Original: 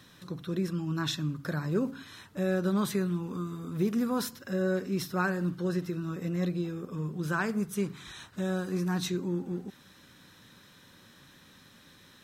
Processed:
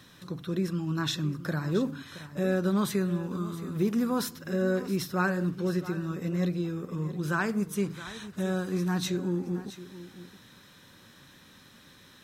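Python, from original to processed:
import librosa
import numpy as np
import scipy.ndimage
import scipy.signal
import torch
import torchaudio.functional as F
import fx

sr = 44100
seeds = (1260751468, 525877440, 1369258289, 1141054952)

y = x + 10.0 ** (-14.5 / 20.0) * np.pad(x, (int(671 * sr / 1000.0), 0))[:len(x)]
y = y * 10.0 ** (1.5 / 20.0)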